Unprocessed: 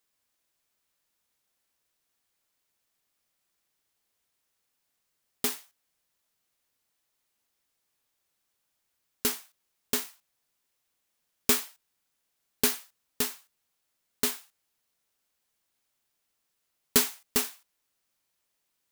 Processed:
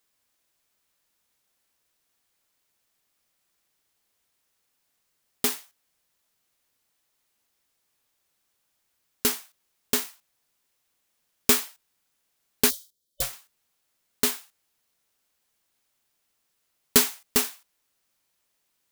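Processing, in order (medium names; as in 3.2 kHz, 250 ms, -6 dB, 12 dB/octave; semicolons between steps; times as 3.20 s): 12.69–13.22 s: time-frequency box 290–3300 Hz -21 dB; 12.71–13.33 s: ring modulator 290 Hz; trim +4 dB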